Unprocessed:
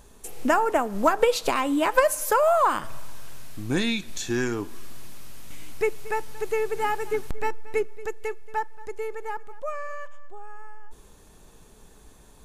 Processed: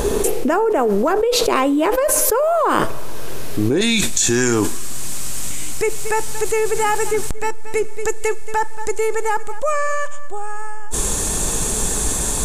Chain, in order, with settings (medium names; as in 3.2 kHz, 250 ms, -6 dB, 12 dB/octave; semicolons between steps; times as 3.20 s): peaking EQ 410 Hz +14 dB 0.86 oct, from 3.81 s 7.9 kHz; level flattener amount 100%; trim -11.5 dB